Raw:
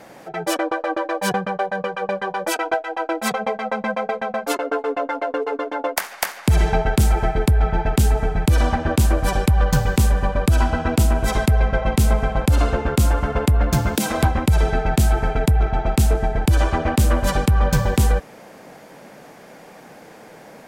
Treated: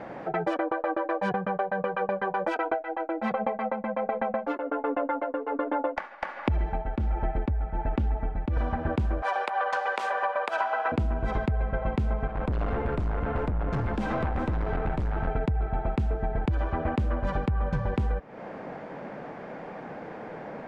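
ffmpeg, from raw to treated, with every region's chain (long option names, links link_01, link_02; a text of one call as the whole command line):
ffmpeg -i in.wav -filter_complex "[0:a]asettb=1/sr,asplit=3[link_01][link_02][link_03];[link_01]atrim=end=2.724[link_04];[link_02]atrim=start=2.72:end=8.57,asetpts=PTS-STARTPTS,afade=type=in:duration=0.004:curve=qsin,afade=type=out:start_time=5.846:duration=0.004:curve=qsin,tremolo=f=1.3:d=0.71,aemphasis=mode=reproduction:type=50fm,aecho=1:1:3.5:0.48,atrim=end_sample=257985[link_05];[link_03]atrim=start=8.566[link_06];[link_04][link_05]acrossfade=duration=0.004:curve1=hsin:curve2=qsin[link_07];[link_07][link_06]acrossfade=duration=0.004:curve1=qsin:curve2=hsin,asettb=1/sr,asplit=3[link_08][link_09][link_10];[link_08]atrim=end=9.224[link_11];[link_09]atrim=start=9.22:end=10.92,asetpts=PTS-STARTPTS,afade=type=in:duration=0.004:curve=qsin,afade=type=out:start_time=1.696:duration=0.004:curve=qsin,highpass=frequency=620:width=0.5412,highpass=frequency=620:width=1.3066,acontrast=61[link_12];[link_10]atrim=start=10.916[link_13];[link_11][link_12]acrossfade=duration=0.004:curve1=hsin:curve2=qsin[link_14];[link_14][link_13]acrossfade=duration=0.004:curve1=qsin:curve2=hsin,asettb=1/sr,asplit=3[link_15][link_16][link_17];[link_15]atrim=end=12.274[link_18];[link_16]atrim=start=12.27:end=15.28,asetpts=PTS-STARTPTS,afade=type=in:duration=0.004:curve=qsin,afade=type=out:start_time=3.006:duration=0.004:curve=qsin,aeval=exprs='(tanh(14.1*val(0)+0.25)-tanh(0.25))/14.1':channel_layout=same,aecho=1:1:386:0.316,atrim=end_sample=132741[link_19];[link_17]atrim=start=15.276[link_20];[link_18][link_19]acrossfade=duration=0.004:curve1=hsin:curve2=qsin[link_21];[link_21][link_20]acrossfade=duration=0.004:curve1=qsin:curve2=hsin,lowpass=1800,acompressor=threshold=-29dB:ratio=6,volume=4dB" out.wav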